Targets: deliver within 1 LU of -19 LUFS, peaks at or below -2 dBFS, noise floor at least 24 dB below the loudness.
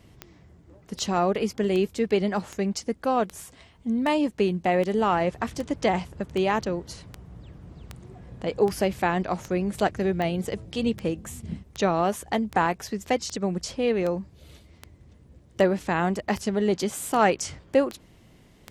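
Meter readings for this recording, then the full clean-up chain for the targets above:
clicks 25; loudness -26.0 LUFS; peak -7.0 dBFS; loudness target -19.0 LUFS
-> de-click; gain +7 dB; limiter -2 dBFS

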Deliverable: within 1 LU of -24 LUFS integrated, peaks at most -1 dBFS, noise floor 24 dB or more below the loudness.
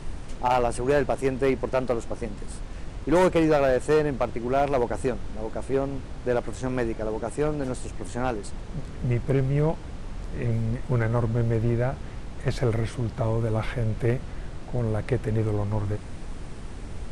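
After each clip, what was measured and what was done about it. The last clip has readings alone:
clipped 0.9%; flat tops at -15.0 dBFS; noise floor -38 dBFS; noise floor target -51 dBFS; loudness -26.5 LUFS; peak -15.0 dBFS; loudness target -24.0 LUFS
-> clip repair -15 dBFS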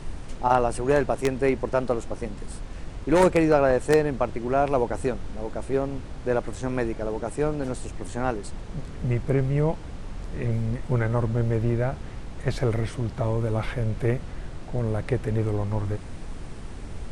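clipped 0.0%; noise floor -38 dBFS; noise floor target -50 dBFS
-> noise print and reduce 12 dB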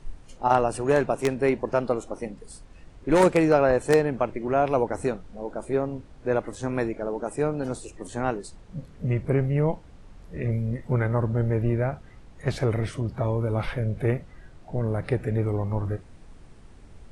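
noise floor -49 dBFS; noise floor target -50 dBFS
-> noise print and reduce 6 dB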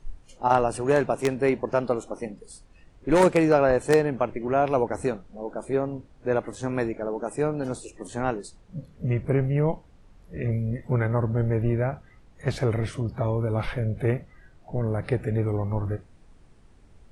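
noise floor -54 dBFS; loudness -26.0 LUFS; peak -6.0 dBFS; loudness target -24.0 LUFS
-> gain +2 dB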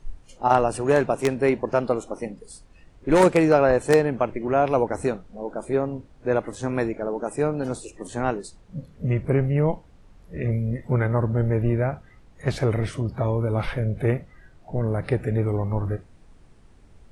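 loudness -24.0 LUFS; peak -4.0 dBFS; noise floor -52 dBFS

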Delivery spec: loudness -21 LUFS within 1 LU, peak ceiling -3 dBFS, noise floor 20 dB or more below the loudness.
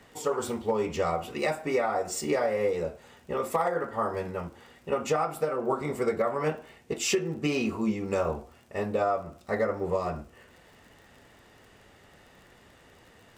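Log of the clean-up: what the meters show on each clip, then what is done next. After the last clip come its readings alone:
ticks 41/s; loudness -29.5 LUFS; peak -15.5 dBFS; loudness target -21.0 LUFS
-> de-click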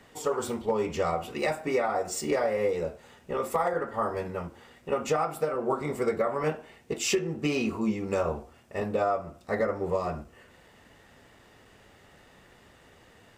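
ticks 0.075/s; loudness -29.5 LUFS; peak -15.5 dBFS; loudness target -21.0 LUFS
-> gain +8.5 dB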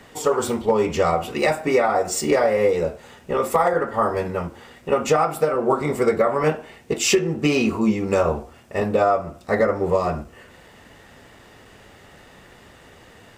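loudness -21.0 LUFS; peak -7.0 dBFS; noise floor -49 dBFS

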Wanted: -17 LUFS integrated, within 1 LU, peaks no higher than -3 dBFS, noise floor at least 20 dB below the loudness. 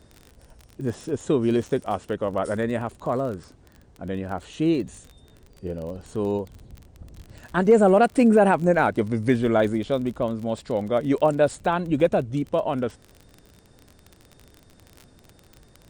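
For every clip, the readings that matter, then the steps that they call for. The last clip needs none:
ticks 31/s; loudness -23.0 LUFS; peak -7.5 dBFS; loudness target -17.0 LUFS
-> de-click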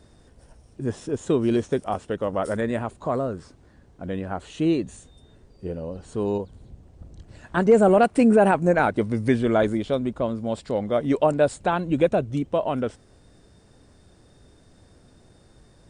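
ticks 0/s; loudness -23.5 LUFS; peak -7.5 dBFS; loudness target -17.0 LUFS
-> gain +6.5 dB; limiter -3 dBFS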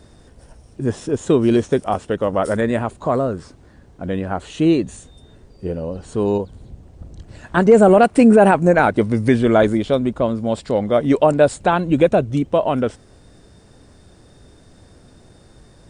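loudness -17.0 LUFS; peak -3.0 dBFS; noise floor -49 dBFS

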